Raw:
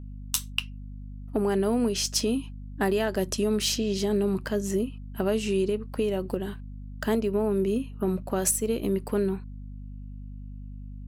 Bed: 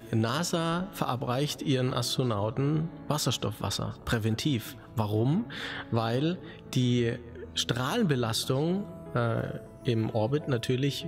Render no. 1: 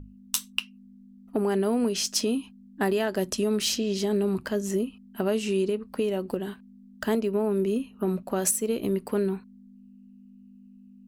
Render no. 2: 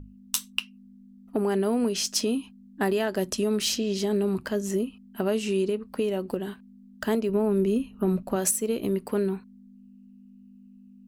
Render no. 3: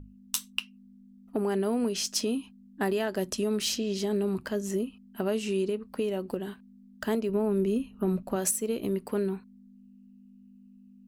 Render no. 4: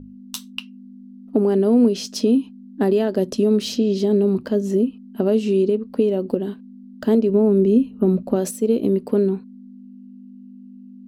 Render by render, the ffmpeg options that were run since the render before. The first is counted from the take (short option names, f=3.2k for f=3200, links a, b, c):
-af "bandreject=f=50:t=h:w=6,bandreject=f=100:t=h:w=6,bandreject=f=150:t=h:w=6"
-filter_complex "[0:a]asettb=1/sr,asplit=3[a][b][c];[a]atrim=end=7.294[d];[b]atrim=start=7.29:end=8.36,asetpts=PTS-STARTPTS,afade=t=in:d=0.004:c=qsin,afade=t=out:st=1.066:d=0.004:c=qsin,lowshelf=f=130:g=10.5[e];[c]atrim=start=8.356[f];[d][e]acrossfade=d=0.004:c1=hsin:c2=qsin[g];[g][f]acrossfade=d=0.004:c1=qsin:c2=hsin"
-af "volume=-3dB"
-af "equalizer=f=125:t=o:w=1:g=4,equalizer=f=250:t=o:w=1:g=12,equalizer=f=500:t=o:w=1:g=9,equalizer=f=2k:t=o:w=1:g=-3,equalizer=f=4k:t=o:w=1:g=5,equalizer=f=8k:t=o:w=1:g=-4,equalizer=f=16k:t=o:w=1:g=-3"